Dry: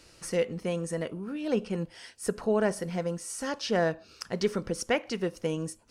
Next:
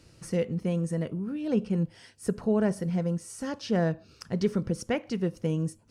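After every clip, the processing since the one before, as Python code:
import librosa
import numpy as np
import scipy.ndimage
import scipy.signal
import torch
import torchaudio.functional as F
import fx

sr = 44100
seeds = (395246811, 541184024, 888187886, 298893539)

y = fx.peak_eq(x, sr, hz=120.0, db=14.5, octaves=2.6)
y = F.gain(torch.from_numpy(y), -5.5).numpy()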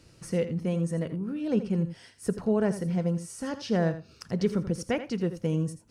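y = x + 10.0 ** (-12.0 / 20.0) * np.pad(x, (int(83 * sr / 1000.0), 0))[:len(x)]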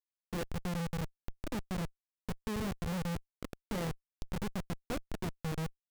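y = fx.schmitt(x, sr, flips_db=-26.0)
y = F.gain(torch.from_numpy(y), -5.5).numpy()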